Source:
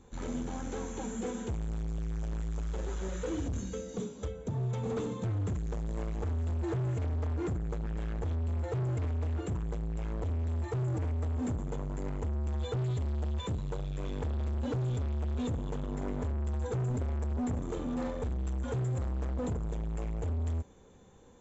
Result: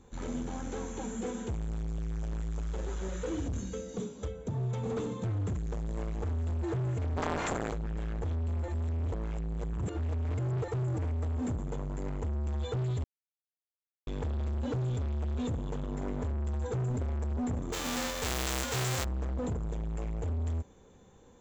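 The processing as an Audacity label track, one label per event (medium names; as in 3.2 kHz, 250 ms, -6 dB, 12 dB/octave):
7.160000	7.710000	spectral peaks clipped ceiling under each frame's peak by 29 dB
8.680000	10.680000	reverse
13.040000	14.070000	mute
17.720000	19.030000	formants flattened exponent 0.3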